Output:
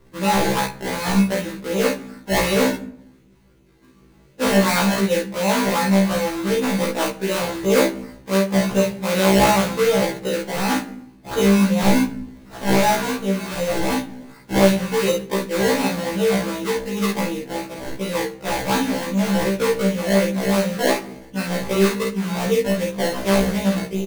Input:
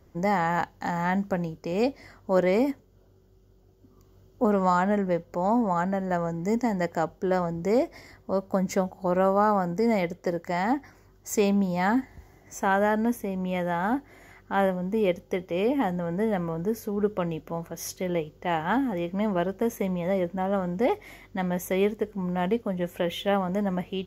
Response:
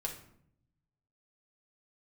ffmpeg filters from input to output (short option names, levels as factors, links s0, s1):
-filter_complex "[0:a]bandreject=f=690:w=12,acrusher=samples=25:mix=1:aa=0.000001:lfo=1:lforange=25:lforate=2.7,aecho=1:1:36|51:0.562|0.631,asplit=2[s0][s1];[1:a]atrim=start_sample=2205[s2];[s1][s2]afir=irnorm=-1:irlink=0,volume=0.631[s3];[s0][s3]amix=inputs=2:normalize=0,afftfilt=real='re*1.73*eq(mod(b,3),0)':imag='im*1.73*eq(mod(b,3),0)':win_size=2048:overlap=0.75,volume=1.33"